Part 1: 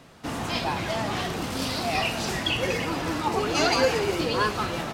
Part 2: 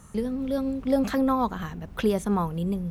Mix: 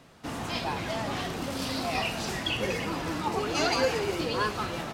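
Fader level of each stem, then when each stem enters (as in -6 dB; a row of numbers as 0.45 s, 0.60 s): -4.0 dB, -16.0 dB; 0.00 s, 0.55 s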